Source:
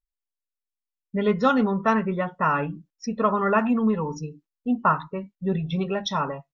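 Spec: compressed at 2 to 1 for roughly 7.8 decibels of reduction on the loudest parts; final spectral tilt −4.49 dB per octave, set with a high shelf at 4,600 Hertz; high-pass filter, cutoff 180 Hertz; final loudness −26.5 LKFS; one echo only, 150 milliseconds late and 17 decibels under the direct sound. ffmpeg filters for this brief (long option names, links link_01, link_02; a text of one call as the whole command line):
ffmpeg -i in.wav -af "highpass=180,highshelf=frequency=4600:gain=5,acompressor=threshold=-30dB:ratio=2,aecho=1:1:150:0.141,volume=4.5dB" out.wav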